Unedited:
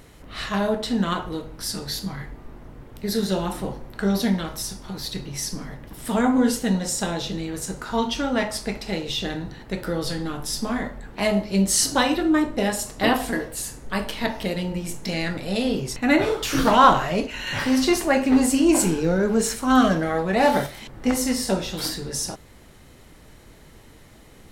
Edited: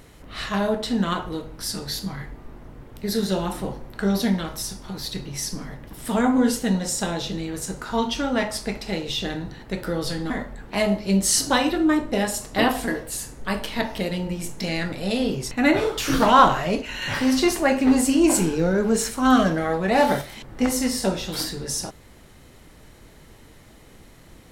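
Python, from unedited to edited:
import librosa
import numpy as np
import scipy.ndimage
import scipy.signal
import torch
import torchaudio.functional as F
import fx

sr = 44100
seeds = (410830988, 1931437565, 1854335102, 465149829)

y = fx.edit(x, sr, fx.cut(start_s=10.3, length_s=0.45), tone=tone)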